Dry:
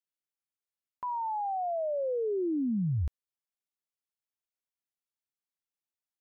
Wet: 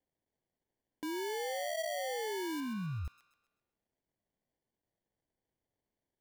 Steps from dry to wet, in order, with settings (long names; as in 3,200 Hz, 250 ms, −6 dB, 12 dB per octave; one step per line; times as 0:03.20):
brickwall limiter −37.5 dBFS, peak gain reduction 12 dB
decimation without filtering 34×
0:02.60–0:03.05: high-frequency loss of the air 230 metres
delay with a high-pass on its return 130 ms, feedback 41%, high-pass 1,400 Hz, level −8 dB
level +3.5 dB